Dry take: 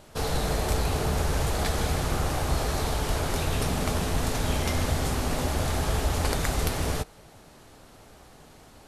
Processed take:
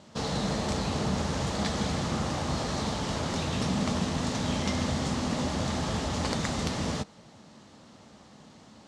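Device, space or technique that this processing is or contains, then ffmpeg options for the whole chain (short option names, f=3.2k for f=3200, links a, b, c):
car door speaker: -af "highpass=110,equalizer=f=210:t=q:w=4:g=9,equalizer=f=410:t=q:w=4:g=-6,equalizer=f=720:t=q:w=4:g=-4,equalizer=f=1.5k:t=q:w=4:g=-5,equalizer=f=2.4k:t=q:w=4:g=-4,lowpass=f=7.2k:w=0.5412,lowpass=f=7.2k:w=1.3066"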